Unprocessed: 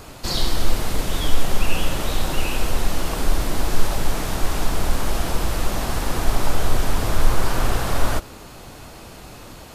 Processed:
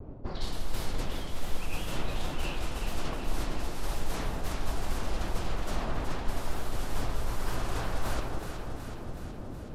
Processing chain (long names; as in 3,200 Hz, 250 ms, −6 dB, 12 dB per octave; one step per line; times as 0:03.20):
low-pass that shuts in the quiet parts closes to 360 Hz, open at −11 dBFS
reversed playback
downward compressor 4 to 1, threshold −29 dBFS, peak gain reduction 19 dB
reversed playback
tape wow and flutter 79 cents
delay that swaps between a low-pass and a high-pass 186 ms, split 1,000 Hz, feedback 81%, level −5 dB